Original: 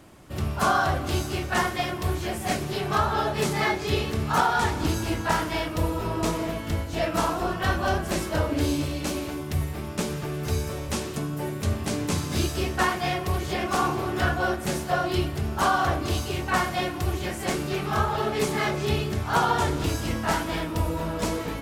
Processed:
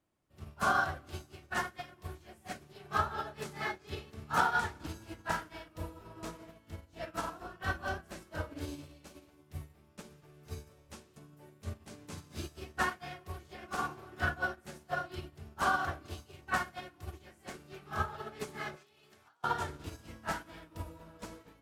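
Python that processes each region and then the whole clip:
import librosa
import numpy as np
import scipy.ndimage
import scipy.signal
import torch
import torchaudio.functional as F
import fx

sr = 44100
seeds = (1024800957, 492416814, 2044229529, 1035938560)

y = fx.chain(x, sr, fx.highpass(hz=840.0, slope=6),
    fx.over_compress(threshold_db=-36.0, ratio=-1.0), at=(18.76, 19.44))
y = fx.hum_notches(y, sr, base_hz=60, count=7)
y = fx.dynamic_eq(y, sr, hz=1500.0, q=2.7, threshold_db=-41.0, ratio=4.0, max_db=6)
y = fx.upward_expand(y, sr, threshold_db=-33.0, expansion=2.5)
y = y * 10.0 ** (-6.0 / 20.0)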